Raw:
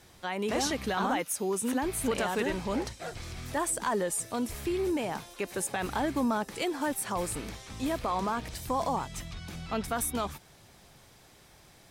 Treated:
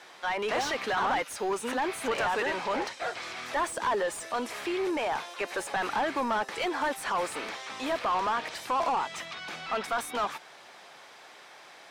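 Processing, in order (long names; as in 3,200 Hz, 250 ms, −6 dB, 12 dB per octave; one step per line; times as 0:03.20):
meter weighting curve A
mid-hump overdrive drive 21 dB, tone 1,600 Hz, clips at −17 dBFS
level −1.5 dB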